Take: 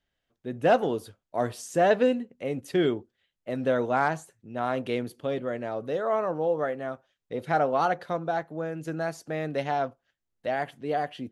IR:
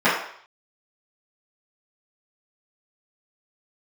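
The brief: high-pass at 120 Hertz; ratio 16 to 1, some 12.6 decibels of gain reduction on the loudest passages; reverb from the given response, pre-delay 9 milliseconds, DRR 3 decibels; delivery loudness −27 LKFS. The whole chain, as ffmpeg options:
-filter_complex "[0:a]highpass=120,acompressor=threshold=-29dB:ratio=16,asplit=2[link_01][link_02];[1:a]atrim=start_sample=2205,adelay=9[link_03];[link_02][link_03]afir=irnorm=-1:irlink=0,volume=-25dB[link_04];[link_01][link_04]amix=inputs=2:normalize=0,volume=7dB"

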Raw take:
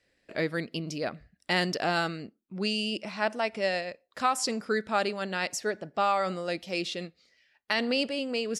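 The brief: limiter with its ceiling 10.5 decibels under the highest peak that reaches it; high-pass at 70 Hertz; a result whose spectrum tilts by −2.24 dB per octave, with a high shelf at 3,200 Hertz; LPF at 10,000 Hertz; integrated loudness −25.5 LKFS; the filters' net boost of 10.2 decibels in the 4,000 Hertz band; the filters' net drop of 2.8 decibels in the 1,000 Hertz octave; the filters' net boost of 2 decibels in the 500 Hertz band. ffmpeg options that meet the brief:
ffmpeg -i in.wav -af "highpass=70,lowpass=10000,equalizer=frequency=500:width_type=o:gain=4,equalizer=frequency=1000:width_type=o:gain=-7,highshelf=frequency=3200:gain=8,equalizer=frequency=4000:width_type=o:gain=7.5,volume=2.5dB,alimiter=limit=-13dB:level=0:latency=1" out.wav

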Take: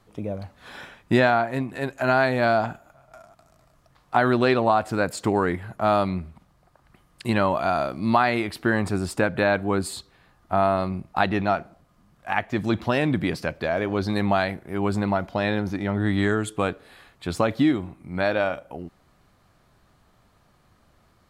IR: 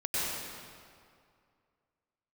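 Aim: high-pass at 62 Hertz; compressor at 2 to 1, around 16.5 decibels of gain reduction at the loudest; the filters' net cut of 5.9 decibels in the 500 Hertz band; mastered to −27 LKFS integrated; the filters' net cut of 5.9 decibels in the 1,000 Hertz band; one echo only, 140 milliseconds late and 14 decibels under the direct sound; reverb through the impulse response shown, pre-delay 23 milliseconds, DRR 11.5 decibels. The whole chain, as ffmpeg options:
-filter_complex "[0:a]highpass=62,equalizer=frequency=500:width_type=o:gain=-6,equalizer=frequency=1000:width_type=o:gain=-6,acompressor=threshold=-49dB:ratio=2,aecho=1:1:140:0.2,asplit=2[link_01][link_02];[1:a]atrim=start_sample=2205,adelay=23[link_03];[link_02][link_03]afir=irnorm=-1:irlink=0,volume=-20dB[link_04];[link_01][link_04]amix=inputs=2:normalize=0,volume=14.5dB"

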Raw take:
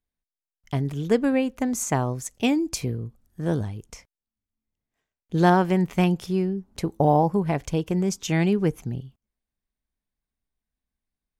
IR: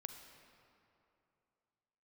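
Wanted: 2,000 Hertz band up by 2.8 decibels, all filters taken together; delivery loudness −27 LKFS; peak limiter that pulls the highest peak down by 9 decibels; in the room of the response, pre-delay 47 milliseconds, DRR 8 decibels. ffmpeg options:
-filter_complex "[0:a]equalizer=frequency=2000:width_type=o:gain=3.5,alimiter=limit=-15.5dB:level=0:latency=1,asplit=2[link_01][link_02];[1:a]atrim=start_sample=2205,adelay=47[link_03];[link_02][link_03]afir=irnorm=-1:irlink=0,volume=-4dB[link_04];[link_01][link_04]amix=inputs=2:normalize=0,volume=-0.5dB"

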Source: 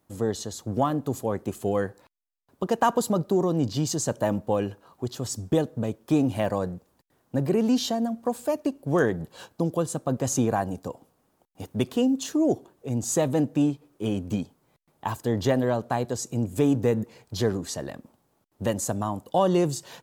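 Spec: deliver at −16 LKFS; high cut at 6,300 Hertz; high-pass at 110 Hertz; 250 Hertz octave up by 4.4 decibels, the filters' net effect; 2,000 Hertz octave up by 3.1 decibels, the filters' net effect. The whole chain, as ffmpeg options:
ffmpeg -i in.wav -af "highpass=110,lowpass=6300,equalizer=frequency=250:width_type=o:gain=5.5,equalizer=frequency=2000:width_type=o:gain=4,volume=8dB" out.wav

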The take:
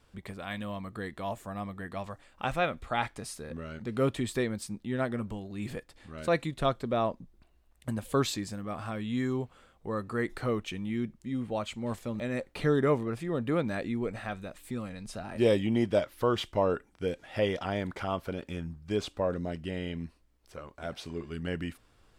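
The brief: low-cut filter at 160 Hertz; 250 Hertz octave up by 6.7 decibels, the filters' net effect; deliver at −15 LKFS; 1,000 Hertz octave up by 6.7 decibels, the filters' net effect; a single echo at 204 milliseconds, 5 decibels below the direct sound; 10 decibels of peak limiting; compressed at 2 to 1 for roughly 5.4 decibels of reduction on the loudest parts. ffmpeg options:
ffmpeg -i in.wav -af "highpass=160,equalizer=frequency=250:width_type=o:gain=8.5,equalizer=frequency=1000:width_type=o:gain=8.5,acompressor=threshold=-25dB:ratio=2,alimiter=limit=-21dB:level=0:latency=1,aecho=1:1:204:0.562,volume=17dB" out.wav

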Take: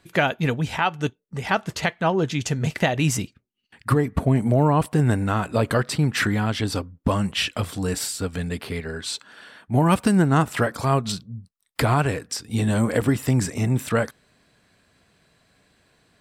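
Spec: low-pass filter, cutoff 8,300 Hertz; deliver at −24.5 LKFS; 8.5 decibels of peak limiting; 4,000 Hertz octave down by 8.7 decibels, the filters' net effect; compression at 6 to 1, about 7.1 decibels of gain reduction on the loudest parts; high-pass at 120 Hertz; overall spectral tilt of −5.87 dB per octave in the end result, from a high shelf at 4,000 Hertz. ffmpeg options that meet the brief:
ffmpeg -i in.wav -af "highpass=120,lowpass=8300,highshelf=frequency=4000:gain=-9,equalizer=frequency=4000:width_type=o:gain=-6.5,acompressor=threshold=-22dB:ratio=6,volume=6.5dB,alimiter=limit=-12.5dB:level=0:latency=1" out.wav

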